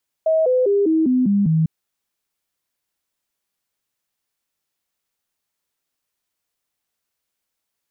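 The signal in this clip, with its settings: stepped sine 639 Hz down, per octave 3, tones 7, 0.20 s, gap 0.00 s -13.5 dBFS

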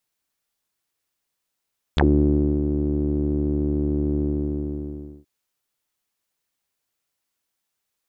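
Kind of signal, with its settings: synth note saw D2 12 dB/oct, low-pass 330 Hz, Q 7.7, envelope 4.5 oct, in 0.06 s, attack 1.1 ms, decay 0.64 s, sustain -7 dB, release 1.05 s, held 2.23 s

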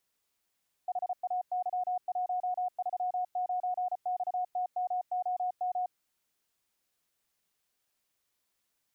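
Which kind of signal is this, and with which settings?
Morse "HAY139XTMOM" 34 wpm 728 Hz -28.5 dBFS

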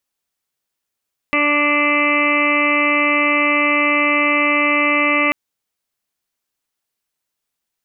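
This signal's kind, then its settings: steady additive tone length 3.99 s, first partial 293 Hz, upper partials -1.5/-10/1/-18/-14/3/0/-1/-12.5 dB, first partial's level -21 dB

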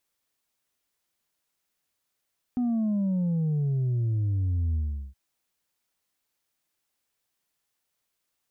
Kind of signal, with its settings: sub drop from 250 Hz, over 2.57 s, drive 2.5 dB, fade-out 0.39 s, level -23.5 dB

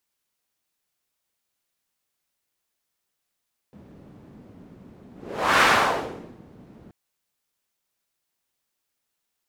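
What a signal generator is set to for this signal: whoosh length 3.18 s, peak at 1.89, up 0.53 s, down 0.86 s, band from 210 Hz, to 1400 Hz, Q 1.3, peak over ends 30.5 dB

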